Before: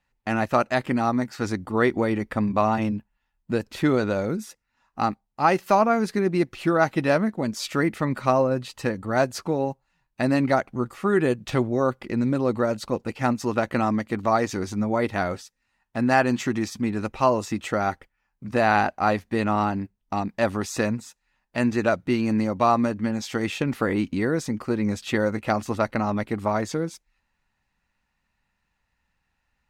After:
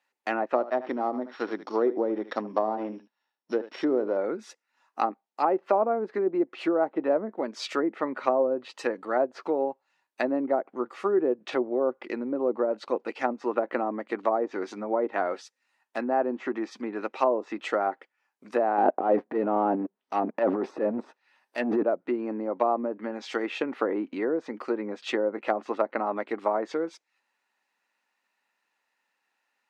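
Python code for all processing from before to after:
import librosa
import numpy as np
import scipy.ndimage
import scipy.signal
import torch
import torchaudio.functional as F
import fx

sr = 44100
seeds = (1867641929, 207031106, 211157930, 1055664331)

y = fx.chain(x, sr, fx.sample_sort(block=8),
    fx.lowpass(hz=4200.0, slope=12),
    fx.echo_single(ms=75, db=-15.5), at=(0.55, 4.17))
y = fx.chain(y, sr, fx.leveller(passes=2),
    fx.notch(hz=7000.0, q=5.6),
    fx.transient(attack_db=-11, sustain_db=11), at=(18.78, 21.83))
y = fx.env_lowpass_down(y, sr, base_hz=630.0, full_db=-18.0)
y = scipy.signal.sosfilt(scipy.signal.butter(4, 320.0, 'highpass', fs=sr, output='sos'), y)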